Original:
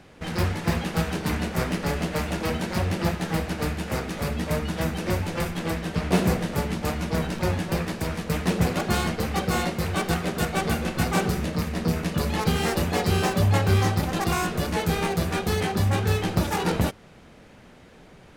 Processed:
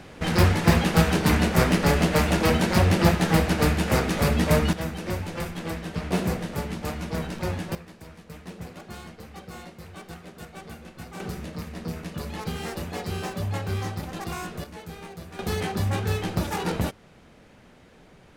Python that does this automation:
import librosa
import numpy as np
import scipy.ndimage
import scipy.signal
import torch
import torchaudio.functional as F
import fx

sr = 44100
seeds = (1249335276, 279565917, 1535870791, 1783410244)

y = fx.gain(x, sr, db=fx.steps((0.0, 6.0), (4.73, -4.0), (7.75, -16.5), (11.2, -8.5), (14.64, -15.5), (15.39, -3.0)))